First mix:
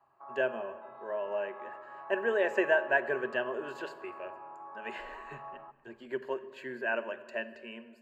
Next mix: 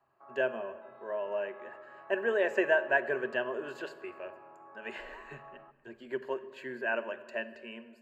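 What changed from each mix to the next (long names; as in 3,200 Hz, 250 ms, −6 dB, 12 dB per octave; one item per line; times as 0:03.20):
background: add parametric band 940 Hz −10.5 dB 0.65 octaves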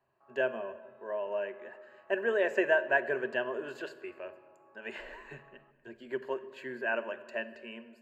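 background −10.5 dB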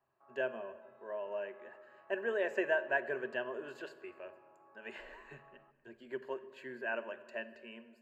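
speech −5.5 dB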